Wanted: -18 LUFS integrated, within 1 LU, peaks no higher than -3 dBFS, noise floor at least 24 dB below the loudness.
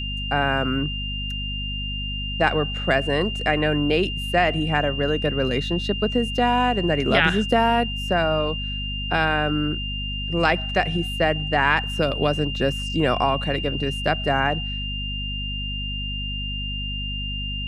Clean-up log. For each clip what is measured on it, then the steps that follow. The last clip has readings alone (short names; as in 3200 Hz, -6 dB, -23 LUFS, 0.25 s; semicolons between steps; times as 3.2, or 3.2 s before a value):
hum 50 Hz; harmonics up to 250 Hz; hum level -28 dBFS; steady tone 2800 Hz; tone level -29 dBFS; loudness -23.0 LUFS; peak -3.0 dBFS; loudness target -18.0 LUFS
-> notches 50/100/150/200/250 Hz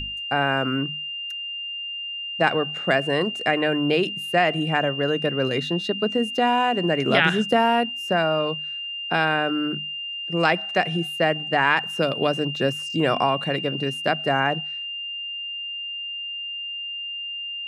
hum none; steady tone 2800 Hz; tone level -29 dBFS
-> notch 2800 Hz, Q 30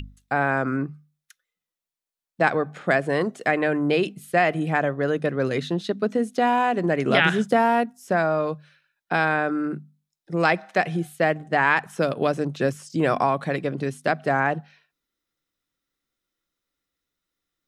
steady tone none; loudness -23.5 LUFS; peak -4.5 dBFS; loudness target -18.0 LUFS
-> gain +5.5 dB; limiter -3 dBFS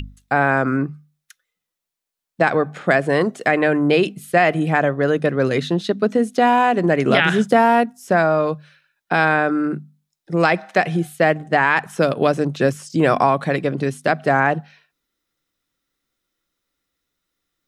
loudness -18.5 LUFS; peak -3.0 dBFS; noise floor -83 dBFS